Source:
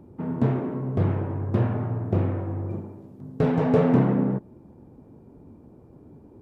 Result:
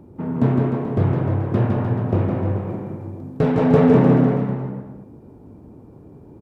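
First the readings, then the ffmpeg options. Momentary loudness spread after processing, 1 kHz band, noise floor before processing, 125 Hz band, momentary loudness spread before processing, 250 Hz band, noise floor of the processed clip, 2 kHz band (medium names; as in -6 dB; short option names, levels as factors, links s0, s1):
16 LU, +6.0 dB, -51 dBFS, +5.5 dB, 13 LU, +6.0 dB, -45 dBFS, +6.0 dB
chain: -af "aecho=1:1:160|304|433.6|550.2|655.2:0.631|0.398|0.251|0.158|0.1,volume=1.5"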